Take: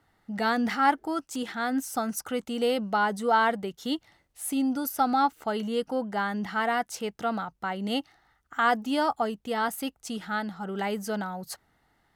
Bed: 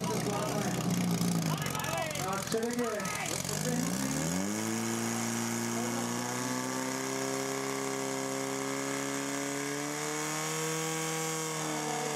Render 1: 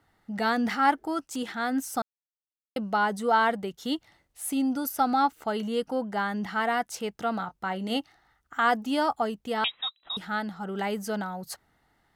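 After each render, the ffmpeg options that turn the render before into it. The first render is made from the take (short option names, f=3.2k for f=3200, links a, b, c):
-filter_complex "[0:a]asettb=1/sr,asplit=3[a][b][c];[a]atrim=end=7.364[d];[b]atrim=start=7.36:end=7.97,asetpts=PTS-STARTPTS,afade=t=in:d=0.004:c=qsin,afade=t=out:st=0.606:d=0.004:c=qsin,asplit=2[e][f];[f]adelay=27,volume=-11.5dB[g];[e][g]amix=inputs=2:normalize=0,atrim=end_sample=26901[h];[c]atrim=start=7.966[i];[d][h]acrossfade=d=0.004:c1=hsin:c2=qsin[j];[j][i]acrossfade=d=0.004:c1=qsin:c2=hsin,asettb=1/sr,asplit=3[k][l][m];[k]atrim=end=9.644[n];[l]atrim=start=9.64:end=10.17,asetpts=PTS-STARTPTS,afade=t=in:d=0.004:c=qsin,afade=t=out:st=0.526:d=0.004:c=qsin,lowpass=f=3.4k:t=q:w=0.5098,lowpass=f=3.4k:t=q:w=0.6013,lowpass=f=3.4k:t=q:w=0.9,lowpass=f=3.4k:t=q:w=2.563,afreqshift=-4000[o];[m]atrim=start=10.166[p];[n][o]acrossfade=d=0.004:c1=hsin:c2=qsin[q];[q][p]acrossfade=d=0.004:c1=qsin:c2=hsin,asplit=3[r][s][t];[r]atrim=end=2.02,asetpts=PTS-STARTPTS,afade=t=out:st=2.016:d=0.004:c=hsin[u];[s]atrim=start=2.02:end=2.76,asetpts=PTS-STARTPTS,volume=0[v];[t]atrim=start=2.76,asetpts=PTS-STARTPTS,afade=t=in:d=0.004:c=hsin[w];[u][v][w]concat=n=3:v=0:a=1"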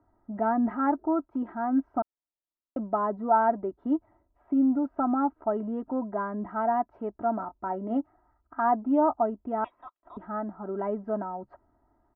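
-af "lowpass=f=1.1k:w=0.5412,lowpass=f=1.1k:w=1.3066,aecho=1:1:3.1:0.77"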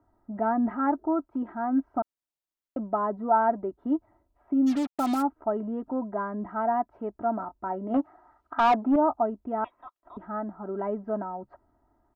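-filter_complex "[0:a]asplit=3[a][b][c];[a]afade=t=out:st=4.66:d=0.02[d];[b]acrusher=bits=5:mix=0:aa=0.5,afade=t=in:st=4.66:d=0.02,afade=t=out:st=5.21:d=0.02[e];[c]afade=t=in:st=5.21:d=0.02[f];[d][e][f]amix=inputs=3:normalize=0,asettb=1/sr,asplit=3[g][h][i];[g]atrim=end=7.944[j];[h]atrim=start=7.94:end=8.96,asetpts=PTS-STARTPTS,afade=t=in:d=0.004:c=qsin,afade=t=out:st=1.016:d=0.004:c=qsin,asplit=2[k][l];[l]highpass=f=720:p=1,volume=19dB,asoftclip=type=tanh:threshold=-13dB[m];[k][m]amix=inputs=2:normalize=0,lowpass=f=1.7k:p=1,volume=-6dB[n];[i]atrim=start=8.956[o];[j][n]acrossfade=d=0.004:c1=hsin:c2=qsin[p];[p][o]acrossfade=d=0.004:c1=qsin:c2=hsin"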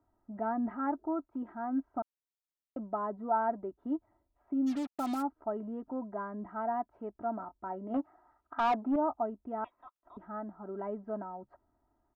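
-af "volume=-7.5dB"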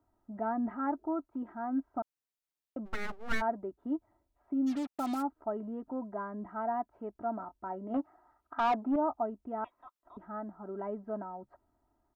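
-filter_complex "[0:a]asplit=3[a][b][c];[a]afade=t=out:st=2.85:d=0.02[d];[b]aeval=exprs='abs(val(0))':c=same,afade=t=in:st=2.85:d=0.02,afade=t=out:st=3.4:d=0.02[e];[c]afade=t=in:st=3.4:d=0.02[f];[d][e][f]amix=inputs=3:normalize=0"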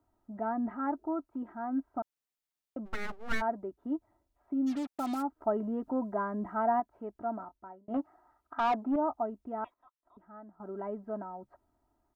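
-filter_complex "[0:a]asplit=6[a][b][c][d][e][f];[a]atrim=end=5.412[g];[b]atrim=start=5.408:end=6.802,asetpts=PTS-STARTPTS,volume=5.5dB[h];[c]atrim=start=6.798:end=7.88,asetpts=PTS-STARTPTS,afade=t=out:st=0.542:d=0.54[i];[d]atrim=start=7.88:end=9.742,asetpts=PTS-STARTPTS,afade=t=in:d=0.004:c=hsin[j];[e]atrim=start=9.738:end=10.602,asetpts=PTS-STARTPTS,volume=-9.5dB[k];[f]atrim=start=10.598[l];[g][h]acrossfade=d=0.004:c1=hsin:c2=hsin[m];[i][j]concat=n=2:v=0:a=1[n];[m][n]acrossfade=d=0.004:c1=hsin:c2=hsin[o];[o][k]acrossfade=d=0.004:c1=hsin:c2=hsin[p];[p][l]acrossfade=d=0.004:c1=hsin:c2=hsin"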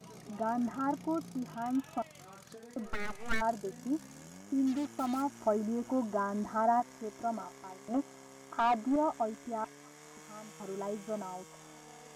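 -filter_complex "[1:a]volume=-19dB[a];[0:a][a]amix=inputs=2:normalize=0"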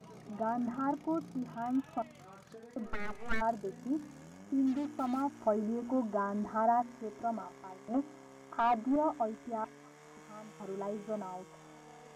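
-af "highshelf=f=3.5k:g=-11,bandreject=f=59.56:t=h:w=4,bandreject=f=119.12:t=h:w=4,bandreject=f=178.68:t=h:w=4,bandreject=f=238.24:t=h:w=4,bandreject=f=297.8:t=h:w=4,bandreject=f=357.36:t=h:w=4,bandreject=f=416.92:t=h:w=4"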